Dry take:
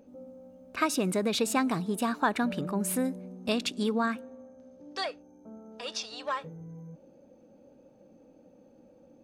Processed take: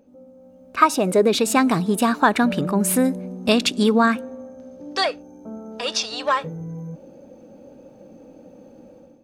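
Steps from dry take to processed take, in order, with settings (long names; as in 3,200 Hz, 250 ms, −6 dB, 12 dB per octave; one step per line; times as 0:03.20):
0:00.77–0:01.37: parametric band 1,300 Hz → 300 Hz +14 dB 0.61 octaves
automatic gain control gain up to 12 dB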